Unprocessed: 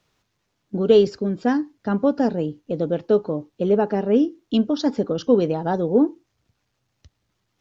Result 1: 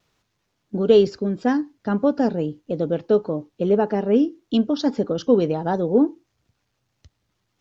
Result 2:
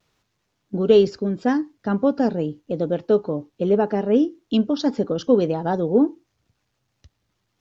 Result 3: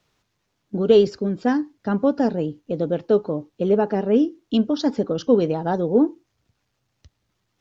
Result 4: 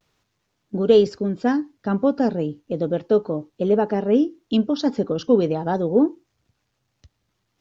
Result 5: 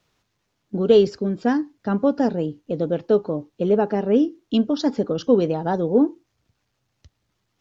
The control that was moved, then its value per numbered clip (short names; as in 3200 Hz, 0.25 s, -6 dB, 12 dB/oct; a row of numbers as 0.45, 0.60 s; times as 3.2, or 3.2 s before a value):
vibrato, rate: 1.6, 0.79, 11, 0.35, 4.6 Hz